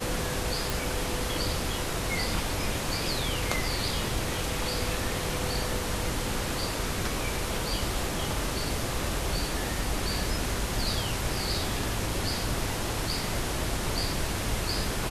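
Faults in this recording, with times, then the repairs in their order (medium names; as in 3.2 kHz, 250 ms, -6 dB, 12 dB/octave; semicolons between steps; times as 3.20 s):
0.70 s: pop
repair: de-click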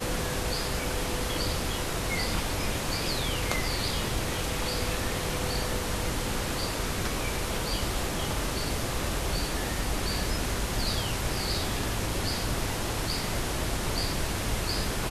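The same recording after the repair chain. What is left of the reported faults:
nothing left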